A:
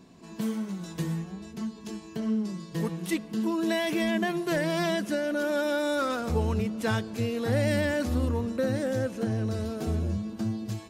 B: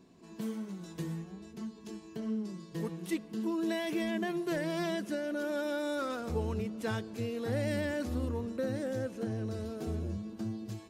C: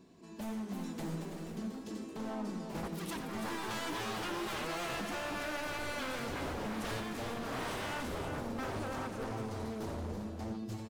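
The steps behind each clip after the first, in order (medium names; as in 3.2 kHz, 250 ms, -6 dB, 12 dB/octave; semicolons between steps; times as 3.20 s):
peaking EQ 370 Hz +4.5 dB 0.75 oct; trim -8 dB
wavefolder -35.5 dBFS; multi-tap echo 87/332/391 ms -11/-8.5/-12 dB; ever faster or slower copies 384 ms, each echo +3 st, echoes 3, each echo -6 dB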